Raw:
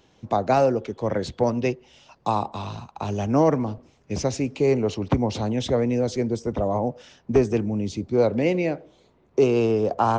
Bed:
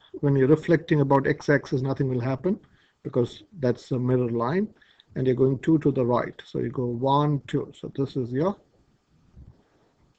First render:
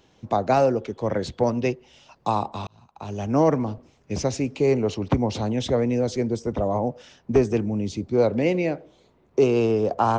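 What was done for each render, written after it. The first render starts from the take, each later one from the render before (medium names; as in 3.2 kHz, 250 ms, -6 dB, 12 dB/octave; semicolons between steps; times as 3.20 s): 2.67–3.44 s: fade in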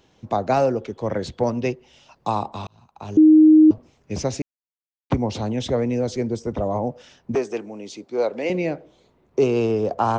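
3.17–3.71 s: bleep 311 Hz -7.5 dBFS; 4.42–5.10 s: mute; 7.35–8.50 s: high-pass 430 Hz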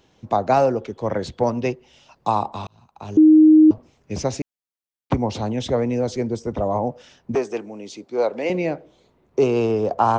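dynamic bell 920 Hz, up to +4 dB, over -32 dBFS, Q 1.2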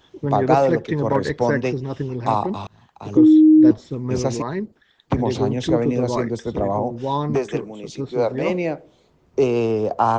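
add bed -1.5 dB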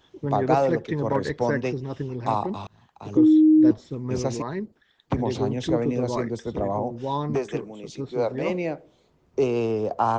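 trim -4.5 dB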